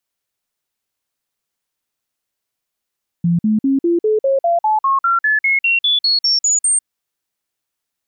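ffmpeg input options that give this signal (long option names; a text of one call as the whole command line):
ffmpeg -f lavfi -i "aevalsrc='0.266*clip(min(mod(t,0.2),0.15-mod(t,0.2))/0.005,0,1)*sin(2*PI*171*pow(2,floor(t/0.2)/3)*mod(t,0.2))':duration=3.6:sample_rate=44100" out.wav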